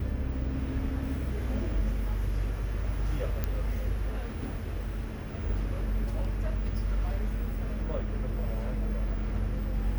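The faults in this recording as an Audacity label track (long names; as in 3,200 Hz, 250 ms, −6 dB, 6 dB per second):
3.440000	3.440000	click −16 dBFS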